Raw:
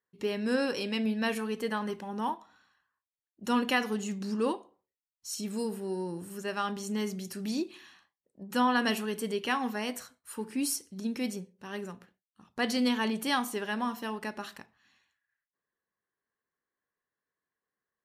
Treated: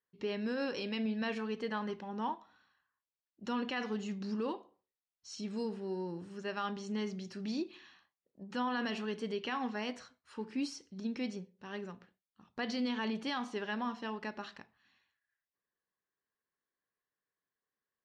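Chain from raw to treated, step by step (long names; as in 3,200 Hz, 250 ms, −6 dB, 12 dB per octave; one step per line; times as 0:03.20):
brickwall limiter −23 dBFS, peak gain reduction 9 dB
low-pass filter 5,400 Hz 24 dB per octave
level −4 dB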